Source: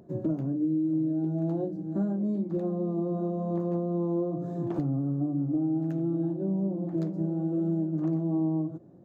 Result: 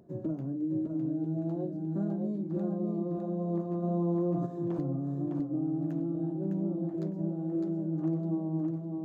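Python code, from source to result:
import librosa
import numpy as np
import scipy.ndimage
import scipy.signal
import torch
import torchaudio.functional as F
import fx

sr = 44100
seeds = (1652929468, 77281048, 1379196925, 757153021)

p1 = x + fx.echo_feedback(x, sr, ms=607, feedback_pct=26, wet_db=-4, dry=0)
p2 = fx.env_flatten(p1, sr, amount_pct=70, at=(3.82, 4.45), fade=0.02)
y = p2 * 10.0 ** (-5.0 / 20.0)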